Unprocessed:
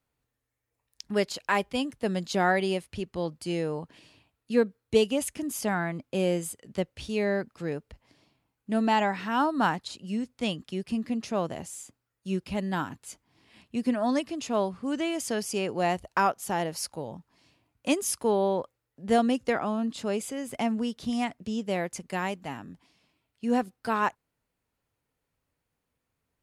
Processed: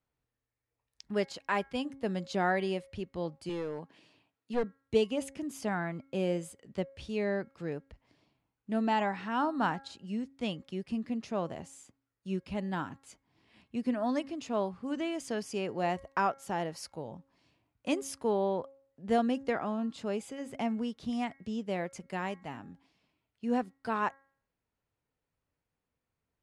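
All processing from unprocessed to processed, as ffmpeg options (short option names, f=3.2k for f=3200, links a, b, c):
-filter_complex "[0:a]asettb=1/sr,asplit=3[a][b][c];[a]atrim=end=3.494[d];[b]atrim=start=3.49:end=4.64,asetpts=PTS-STARTPTS,afade=t=in:d=0.004:c=qsin,afade=t=out:st=1.146:d=0.004:c=qsin,highpass=160,aeval=exprs='clip(val(0),-1,0.0447)':c=same[e];[c]atrim=start=4.636[f];[d][e]acrossfade=d=0.004:c1=hsin:c2=qsin[g];[g][f]acrossfade=d=0.004:c1=qsin:c2=hsin,lowpass=10k,highshelf=f=4.2k:g=-7,bandreject=f=272.8:t=h:w=4,bandreject=f=545.6:t=h:w=4,bandreject=f=818.4:t=h:w=4,bandreject=f=1.0912k:t=h:w=4,bandreject=f=1.364k:t=h:w=4,bandreject=f=1.6368k:t=h:w=4,bandreject=f=1.9096k:t=h:w=4,bandreject=f=2.1824k:t=h:w=4,volume=-4.5dB"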